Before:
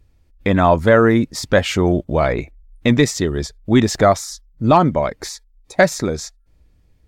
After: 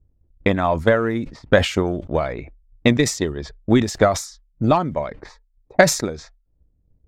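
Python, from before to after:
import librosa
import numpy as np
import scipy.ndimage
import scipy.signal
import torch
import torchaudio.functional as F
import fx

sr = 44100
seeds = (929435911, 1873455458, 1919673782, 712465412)

y = fx.transient(x, sr, attack_db=11, sustain_db=-2)
y = fx.env_lowpass(y, sr, base_hz=510.0, full_db=-9.5)
y = fx.sustainer(y, sr, db_per_s=120.0)
y = y * librosa.db_to_amplitude(-9.0)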